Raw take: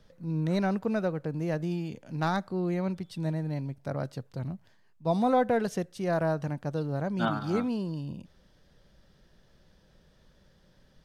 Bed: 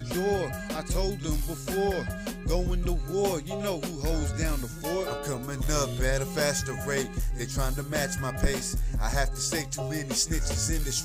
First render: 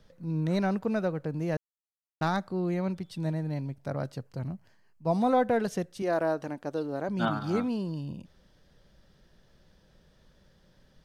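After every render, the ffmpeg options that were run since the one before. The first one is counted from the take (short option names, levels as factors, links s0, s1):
-filter_complex "[0:a]asettb=1/sr,asplit=3[s0][s1][s2];[s0]atrim=end=4.164[s3];[s1]atrim=start=4.16:end=5.21,asetpts=PTS-STARTPTS,afade=t=in:d=0.004:c=qsin,afade=t=out:st=1.046:d=0.004:c=qsin,bandreject=f=3600:w=5.5[s4];[s2]atrim=start=5.206[s5];[s3][s4]acrossfade=d=0.004:c1=hsin:c2=qsin[s6];[s6][s5]acrossfade=d=0.004:c1=qsin:c2=hsin,asettb=1/sr,asplit=3[s7][s8][s9];[s7]atrim=end=6.024[s10];[s8]atrim=start=6.02:end=7.09,asetpts=PTS-STARTPTS,afade=t=in:d=0.004:c=qsin,afade=t=out:st=1.066:d=0.004:c=qsin,lowshelf=f=210:t=q:w=1.5:g=-9.5[s11];[s9]atrim=start=7.086[s12];[s10][s11]acrossfade=d=0.004:c1=hsin:c2=qsin[s13];[s13][s12]acrossfade=d=0.004:c1=qsin:c2=hsin,asplit=3[s14][s15][s16];[s14]atrim=end=1.57,asetpts=PTS-STARTPTS,afade=t=out:st=1.566:d=0.004:c=hsin[s17];[s15]atrim=start=1.57:end=2.21,asetpts=PTS-STARTPTS,volume=0[s18];[s16]atrim=start=2.21,asetpts=PTS-STARTPTS,afade=t=in:d=0.004:c=hsin[s19];[s17][s18][s19]concat=n=3:v=0:a=1"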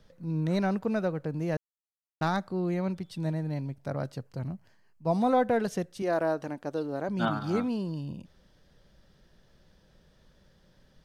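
-af anull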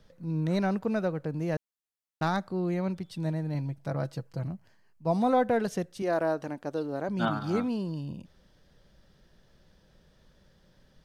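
-filter_complex "[0:a]asettb=1/sr,asplit=3[s0][s1][s2];[s0]atrim=end=3.544[s3];[s1]atrim=start=3.54:end=4.47,asetpts=PTS-STARTPTS,afade=t=in:d=0.004:c=qsin,afade=t=out:st=0.926:d=0.004:c=qsin,aecho=1:1:6.1:0.5,atrim=end_sample=41013[s4];[s2]atrim=start=4.466[s5];[s3][s4]acrossfade=d=0.004:c1=hsin:c2=qsin[s6];[s6][s5]acrossfade=d=0.004:c1=qsin:c2=hsin"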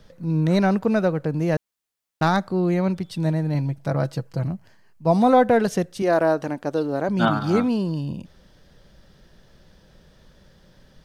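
-af "volume=2.66"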